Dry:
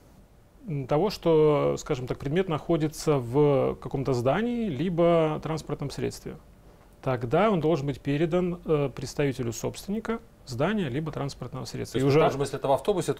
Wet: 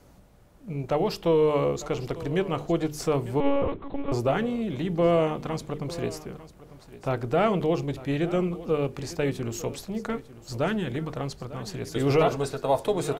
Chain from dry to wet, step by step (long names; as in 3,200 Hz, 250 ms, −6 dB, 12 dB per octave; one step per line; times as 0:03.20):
mains-hum notches 50/100/150/200/250/300/350/400/450 Hz
on a send: single-tap delay 899 ms −16.5 dB
0:03.40–0:04.12: on the sum: one-pitch LPC vocoder at 8 kHz 280 Hz